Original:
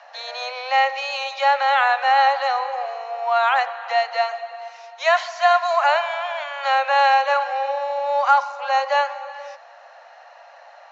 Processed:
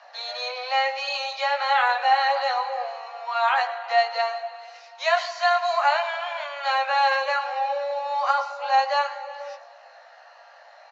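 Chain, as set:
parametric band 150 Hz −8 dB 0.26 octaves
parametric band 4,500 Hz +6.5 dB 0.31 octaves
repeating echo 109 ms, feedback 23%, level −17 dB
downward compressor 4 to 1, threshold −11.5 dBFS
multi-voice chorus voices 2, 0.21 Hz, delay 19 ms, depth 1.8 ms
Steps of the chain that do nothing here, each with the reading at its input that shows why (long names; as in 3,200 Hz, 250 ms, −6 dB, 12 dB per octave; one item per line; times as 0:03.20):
parametric band 150 Hz: nothing at its input below 450 Hz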